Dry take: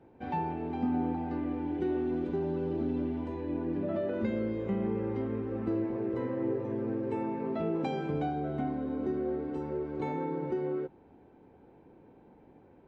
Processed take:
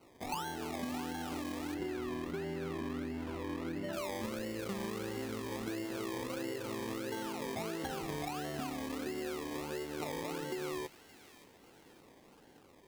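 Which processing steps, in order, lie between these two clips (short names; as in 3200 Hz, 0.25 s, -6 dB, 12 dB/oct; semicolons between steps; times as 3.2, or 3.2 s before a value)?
low shelf 500 Hz -9 dB; decimation with a swept rate 25×, swing 60% 1.5 Hz; 1.74–3.93 tone controls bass +4 dB, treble -10 dB; compressor, threshold -38 dBFS, peak gain reduction 7.5 dB; thin delay 0.571 s, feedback 42%, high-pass 1800 Hz, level -12.5 dB; gain +2.5 dB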